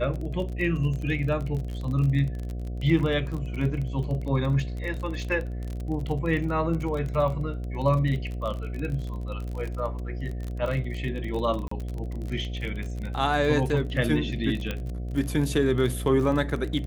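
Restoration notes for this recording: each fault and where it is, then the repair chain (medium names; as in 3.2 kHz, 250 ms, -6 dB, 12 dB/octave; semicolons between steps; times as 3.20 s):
buzz 60 Hz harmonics 12 -32 dBFS
crackle 34 per s -31 dBFS
11.68–11.71 s: dropout 34 ms
14.71 s: pop -16 dBFS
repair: de-click; de-hum 60 Hz, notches 12; interpolate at 11.68 s, 34 ms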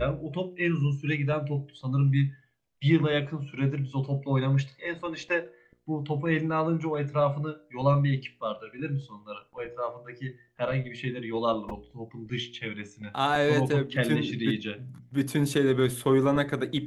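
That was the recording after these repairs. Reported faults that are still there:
nothing left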